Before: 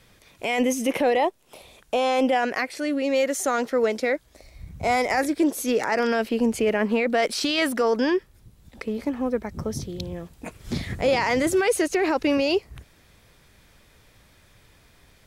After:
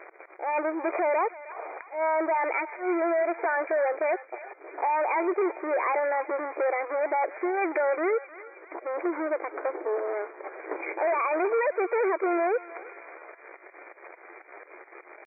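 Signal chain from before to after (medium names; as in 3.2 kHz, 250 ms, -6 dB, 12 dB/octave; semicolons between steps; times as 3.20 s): local Wiener filter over 9 samples; compression 4:1, threshold -36 dBFS, peak gain reduction 16 dB; waveshaping leveller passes 5; slow attack 111 ms; brick-wall FIR band-pass 260–2000 Hz; on a send: thinning echo 316 ms, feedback 72%, high-pass 1.1 kHz, level -11.5 dB; on the sum: pitch shift +3.5 st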